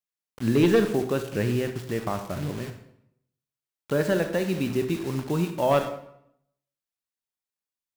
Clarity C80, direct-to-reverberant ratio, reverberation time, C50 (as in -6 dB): 12.0 dB, 7.0 dB, 0.75 s, 9.0 dB